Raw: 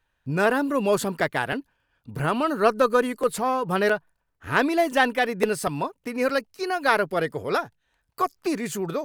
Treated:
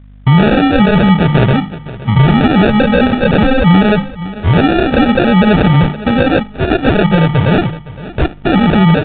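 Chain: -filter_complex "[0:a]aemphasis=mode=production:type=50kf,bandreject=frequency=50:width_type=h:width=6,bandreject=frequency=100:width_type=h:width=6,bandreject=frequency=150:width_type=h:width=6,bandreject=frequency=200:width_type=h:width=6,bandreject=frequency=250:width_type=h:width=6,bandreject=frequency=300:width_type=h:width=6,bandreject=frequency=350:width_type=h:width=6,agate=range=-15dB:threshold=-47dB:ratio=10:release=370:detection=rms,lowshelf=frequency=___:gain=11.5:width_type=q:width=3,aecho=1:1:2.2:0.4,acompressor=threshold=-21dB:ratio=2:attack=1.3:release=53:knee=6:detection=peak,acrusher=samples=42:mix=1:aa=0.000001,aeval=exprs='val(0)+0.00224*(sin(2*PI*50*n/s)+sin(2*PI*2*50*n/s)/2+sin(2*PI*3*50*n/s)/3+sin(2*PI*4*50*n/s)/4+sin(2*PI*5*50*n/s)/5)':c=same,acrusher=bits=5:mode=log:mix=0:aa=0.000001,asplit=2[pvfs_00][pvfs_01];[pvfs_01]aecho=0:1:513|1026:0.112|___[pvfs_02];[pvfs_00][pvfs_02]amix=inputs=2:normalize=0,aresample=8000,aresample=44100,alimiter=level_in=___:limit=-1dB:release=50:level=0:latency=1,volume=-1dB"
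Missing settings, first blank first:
260, 0.0168, 18dB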